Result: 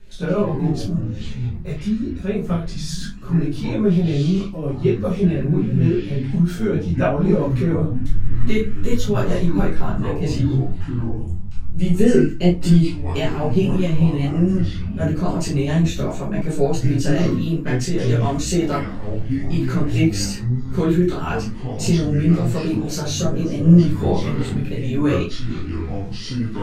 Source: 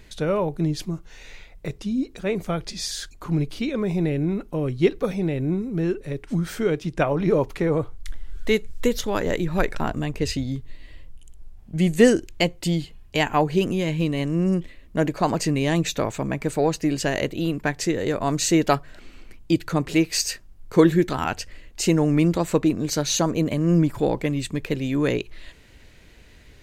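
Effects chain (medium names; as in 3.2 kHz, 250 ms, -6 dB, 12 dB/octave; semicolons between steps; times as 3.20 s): 11.91–13.27 s: peaking EQ 320 Hz +8 dB 1.3 oct; in parallel at 0 dB: peak limiter -13 dBFS, peak gain reduction 14.5 dB; on the sum: rotary cabinet horn 7.5 Hz, later 0.85 Hz, at 20.76 s; reverberation RT60 0.30 s, pre-delay 5 ms, DRR -6 dB; ever faster or slower copies 117 ms, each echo -6 st, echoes 3, each echo -6 dB; detune thickener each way 19 cents; trim -9 dB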